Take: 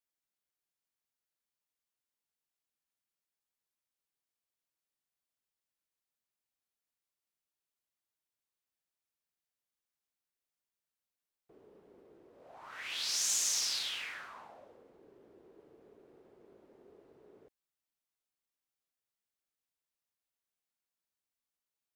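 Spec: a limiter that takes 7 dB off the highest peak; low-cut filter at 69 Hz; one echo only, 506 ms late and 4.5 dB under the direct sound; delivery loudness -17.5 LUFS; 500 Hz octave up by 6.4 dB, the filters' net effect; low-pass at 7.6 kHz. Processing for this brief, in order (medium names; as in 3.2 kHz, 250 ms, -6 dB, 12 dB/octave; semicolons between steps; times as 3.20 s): high-pass 69 Hz; low-pass 7.6 kHz; peaking EQ 500 Hz +8 dB; peak limiter -28.5 dBFS; delay 506 ms -4.5 dB; trim +19.5 dB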